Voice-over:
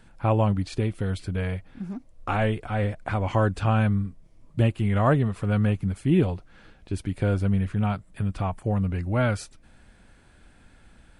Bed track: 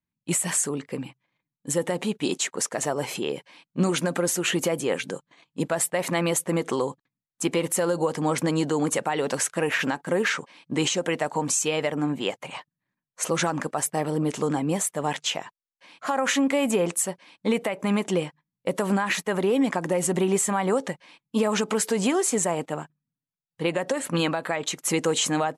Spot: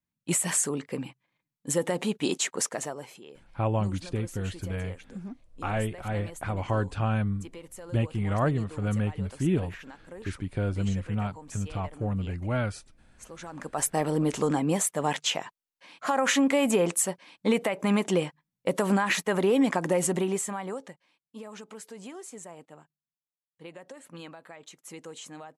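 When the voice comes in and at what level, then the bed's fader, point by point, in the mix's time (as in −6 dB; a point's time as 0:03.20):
3.35 s, −5.0 dB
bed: 0:02.68 −1.5 dB
0:03.22 −20 dB
0:13.39 −20 dB
0:13.83 −0.5 dB
0:19.98 −0.5 dB
0:21.20 −19.5 dB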